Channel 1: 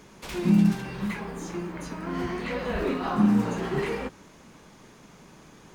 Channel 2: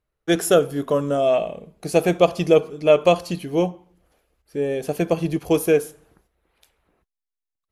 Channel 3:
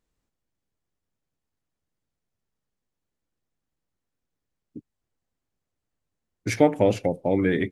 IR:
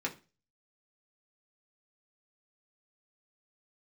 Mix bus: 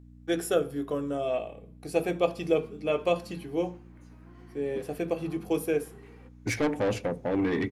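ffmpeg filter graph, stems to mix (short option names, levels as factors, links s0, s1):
-filter_complex "[0:a]acompressor=threshold=0.0501:ratio=6,adelay=2200,volume=0.133,asplit=2[s0][s1];[s1]volume=0.141[s2];[1:a]bandreject=f=6400:w=10,volume=0.2,asplit=2[s3][s4];[s4]volume=0.562[s5];[2:a]aeval=exprs='val(0)+0.00447*(sin(2*PI*60*n/s)+sin(2*PI*2*60*n/s)/2+sin(2*PI*3*60*n/s)/3+sin(2*PI*4*60*n/s)/4+sin(2*PI*5*60*n/s)/5)':c=same,asoftclip=type=tanh:threshold=0.0841,volume=0.75,asplit=3[s6][s7][s8];[s7]volume=0.251[s9];[s8]apad=whole_len=350446[s10];[s0][s10]sidechaingate=range=0.398:threshold=0.00708:ratio=16:detection=peak[s11];[3:a]atrim=start_sample=2205[s12];[s2][s5][s9]amix=inputs=3:normalize=0[s13];[s13][s12]afir=irnorm=-1:irlink=0[s14];[s11][s3][s6][s14]amix=inputs=4:normalize=0"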